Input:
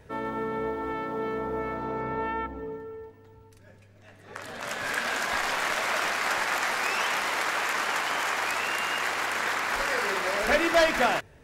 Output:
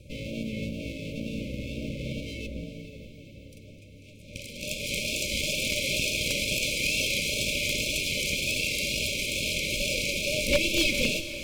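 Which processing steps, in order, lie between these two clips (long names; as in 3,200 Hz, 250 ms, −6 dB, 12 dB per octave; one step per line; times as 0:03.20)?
lower of the sound and its delayed copy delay 1.2 ms
brick-wall band-stop 620–2,100 Hz
tape wow and flutter 40 cents
wave folding −19.5 dBFS
on a send: feedback delay with all-pass diffusion 451 ms, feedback 68%, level −13 dB
on the sum: level +5 dB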